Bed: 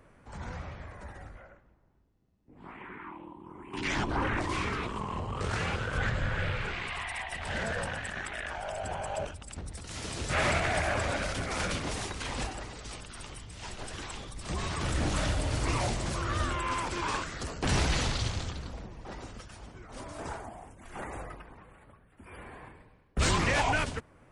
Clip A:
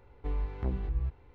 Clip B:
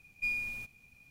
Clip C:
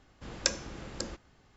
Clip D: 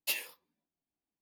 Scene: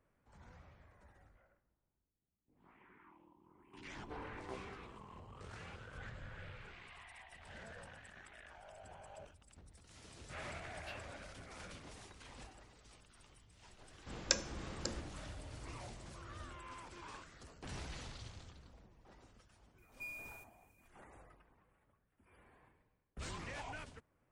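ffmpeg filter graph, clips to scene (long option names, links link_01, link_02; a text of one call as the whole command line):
ffmpeg -i bed.wav -i cue0.wav -i cue1.wav -i cue2.wav -i cue3.wav -filter_complex "[0:a]volume=-19.5dB[link_01];[1:a]highpass=450[link_02];[4:a]lowpass=3300[link_03];[2:a]aexciter=amount=3.3:drive=4.2:freq=6700[link_04];[link_02]atrim=end=1.34,asetpts=PTS-STARTPTS,volume=-3.5dB,afade=type=in:duration=0.004:curve=hsin,afade=type=out:start_time=1.336:duration=0.004:curve=hsin,adelay=3860[link_05];[link_03]atrim=end=1.21,asetpts=PTS-STARTPTS,volume=-14.5dB,afade=type=in:duration=0.004:curve=hsin,afade=type=out:start_time=1.206:duration=0.004:curve=hsin,adelay=10790[link_06];[3:a]atrim=end=1.56,asetpts=PTS-STARTPTS,volume=-4dB,afade=type=in:duration=0.004:curve=hsin,afade=type=out:start_time=1.556:duration=0.004:curve=hsin,adelay=13850[link_07];[link_04]atrim=end=1.1,asetpts=PTS-STARTPTS,volume=-14dB,afade=type=in:duration=0.004:curve=hsin,afade=type=out:start_time=1.096:duration=0.004:curve=hsin,adelay=19780[link_08];[link_01][link_05][link_06][link_07][link_08]amix=inputs=5:normalize=0" out.wav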